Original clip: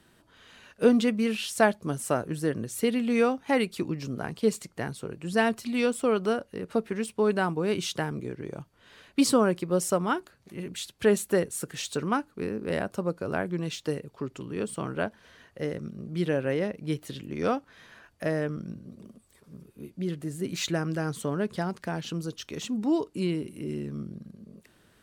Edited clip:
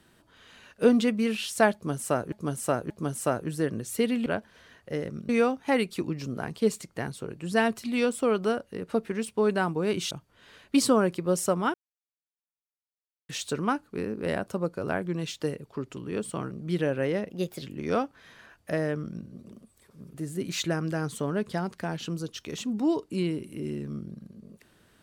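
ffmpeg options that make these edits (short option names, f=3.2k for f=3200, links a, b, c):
-filter_complex "[0:a]asplit=12[a][b][c][d][e][f][g][h][i][j][k][l];[a]atrim=end=2.322[m];[b]atrim=start=1.738:end=2.322[n];[c]atrim=start=1.738:end=3.102[o];[d]atrim=start=14.948:end=15.982[p];[e]atrim=start=3.098:end=7.922[q];[f]atrim=start=8.548:end=10.18,asetpts=PTS-STARTPTS,afade=t=out:st=1.628:d=0.004:c=hsin[r];[g]atrim=start=10.18:end=11.73,asetpts=PTS-STARTPTS,volume=0[s];[h]atrim=start=11.73:end=14.952,asetpts=PTS-STARTPTS,afade=t=in:d=0.004:c=hsin[t];[i]atrim=start=15.978:end=16.764[u];[j]atrim=start=16.76:end=17.15,asetpts=PTS-STARTPTS,asetrate=52038,aresample=44100,atrim=end_sample=14575,asetpts=PTS-STARTPTS[v];[k]atrim=start=17.146:end=19.672[w];[l]atrim=start=20.178[x];[m][n]acrossfade=d=0.004:c1=hsin:c2=hsin[y];[y][o]acrossfade=d=0.004:c1=hsin:c2=hsin[z];[z][p]acrossfade=d=0.004:c1=hsin:c2=hsin[aa];[aa][q]acrossfade=d=0.004:c1=hsin:c2=hsin[ab];[r][s][t]concat=n=3:v=0:a=1[ac];[ab][ac]acrossfade=d=0.004:c1=hsin:c2=hsin[ad];[ad][u]acrossfade=d=0.004:c1=hsin:c2=hsin[ae];[ae][v]acrossfade=d=0.004:c1=hsin:c2=hsin[af];[af][w]acrossfade=d=0.004:c1=hsin:c2=hsin[ag];[ag][x]acrossfade=d=0.004:c1=hsin:c2=hsin"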